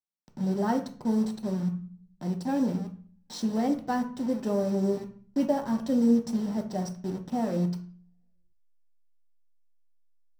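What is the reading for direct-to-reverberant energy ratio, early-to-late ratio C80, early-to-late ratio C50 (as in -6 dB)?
3.0 dB, 16.0 dB, 10.5 dB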